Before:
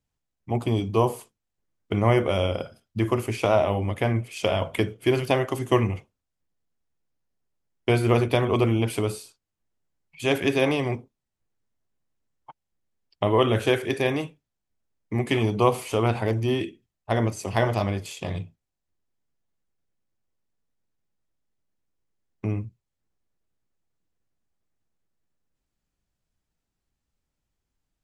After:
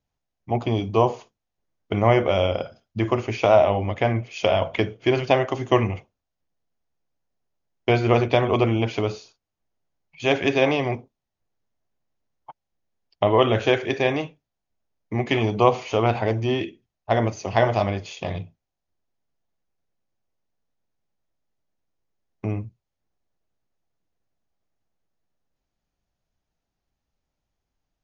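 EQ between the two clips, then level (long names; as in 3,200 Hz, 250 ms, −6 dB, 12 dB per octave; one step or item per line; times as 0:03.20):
parametric band 690 Hz +6 dB 0.87 octaves
dynamic equaliser 2,400 Hz, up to +3 dB, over −41 dBFS, Q 1.1
linear-phase brick-wall low-pass 7,000 Hz
0.0 dB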